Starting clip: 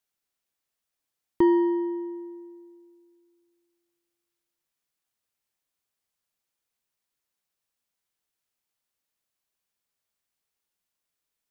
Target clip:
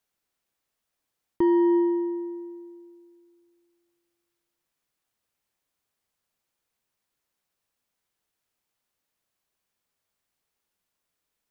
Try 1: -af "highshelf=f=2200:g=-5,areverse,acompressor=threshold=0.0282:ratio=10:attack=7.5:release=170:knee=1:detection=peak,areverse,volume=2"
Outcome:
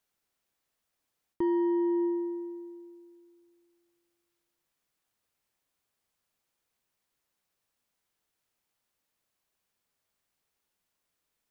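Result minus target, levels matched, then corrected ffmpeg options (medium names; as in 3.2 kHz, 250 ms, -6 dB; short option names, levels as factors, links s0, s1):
compression: peak gain reduction +6.5 dB
-af "highshelf=f=2200:g=-5,areverse,acompressor=threshold=0.0668:ratio=10:attack=7.5:release=170:knee=1:detection=peak,areverse,volume=2"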